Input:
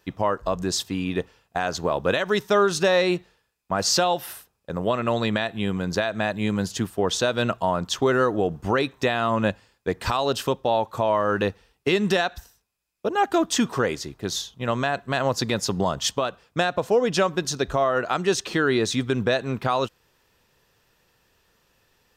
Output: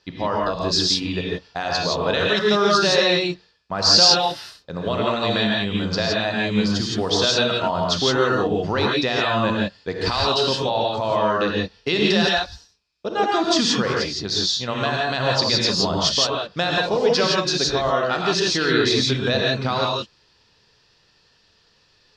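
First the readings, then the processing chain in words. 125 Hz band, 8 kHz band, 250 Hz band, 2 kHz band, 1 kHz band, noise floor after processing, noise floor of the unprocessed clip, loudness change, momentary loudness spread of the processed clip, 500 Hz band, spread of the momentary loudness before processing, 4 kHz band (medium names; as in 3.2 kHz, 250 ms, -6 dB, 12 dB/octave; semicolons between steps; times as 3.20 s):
+2.5 dB, +2.5 dB, +2.5 dB, +4.0 dB, +2.5 dB, -60 dBFS, -70 dBFS, +4.5 dB, 8 LU, +1.5 dB, 8 LU, +10.5 dB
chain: resonant low-pass 4.7 kHz, resonance Q 4.1; gated-style reverb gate 190 ms rising, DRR -2.5 dB; trim -2.5 dB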